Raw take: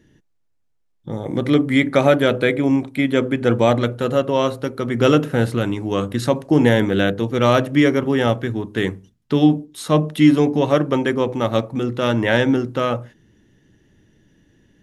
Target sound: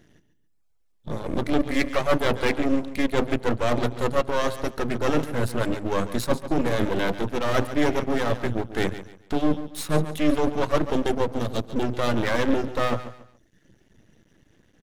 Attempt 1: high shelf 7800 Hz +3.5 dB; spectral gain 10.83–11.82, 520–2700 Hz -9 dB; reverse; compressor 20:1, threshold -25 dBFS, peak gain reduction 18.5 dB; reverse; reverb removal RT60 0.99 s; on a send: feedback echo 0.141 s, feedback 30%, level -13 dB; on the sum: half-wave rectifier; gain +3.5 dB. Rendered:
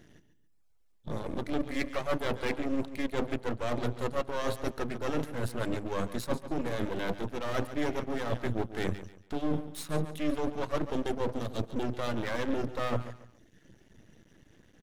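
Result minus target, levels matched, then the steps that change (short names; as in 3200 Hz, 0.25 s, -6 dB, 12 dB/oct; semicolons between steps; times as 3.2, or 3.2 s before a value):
compressor: peak gain reduction +9.5 dB
change: compressor 20:1, threshold -15 dBFS, peak gain reduction 9 dB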